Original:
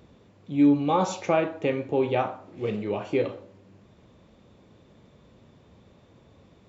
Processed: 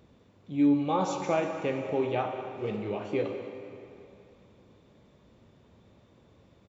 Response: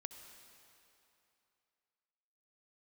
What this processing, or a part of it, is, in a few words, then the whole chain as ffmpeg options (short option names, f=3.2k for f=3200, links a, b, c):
cave: -filter_complex "[0:a]aecho=1:1:197:0.2[a];[1:a]atrim=start_sample=2205[b];[a][b]afir=irnorm=-1:irlink=0"